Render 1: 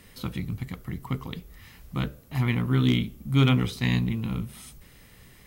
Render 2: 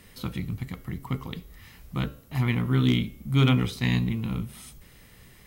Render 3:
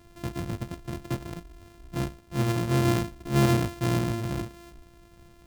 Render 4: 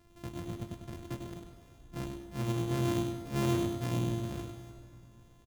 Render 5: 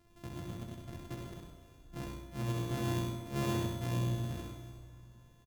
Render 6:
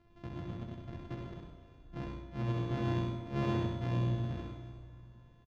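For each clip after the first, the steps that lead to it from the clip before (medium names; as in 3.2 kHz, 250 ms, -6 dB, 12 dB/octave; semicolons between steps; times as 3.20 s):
de-hum 272.8 Hz, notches 28
sorted samples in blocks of 128 samples; bass shelf 350 Hz +6 dB; trim -5 dB
feedback delay 99 ms, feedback 33%, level -6.5 dB; plate-style reverb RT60 3 s, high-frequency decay 0.75×, DRR 10 dB; trim -9 dB
feedback delay 65 ms, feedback 44%, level -4 dB; trim -3.5 dB
distance through air 220 m; trim +1.5 dB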